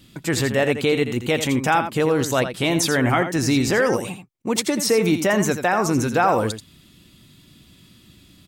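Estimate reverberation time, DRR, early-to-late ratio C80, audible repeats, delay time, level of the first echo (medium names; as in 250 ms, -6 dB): no reverb, no reverb, no reverb, 1, 84 ms, -9.5 dB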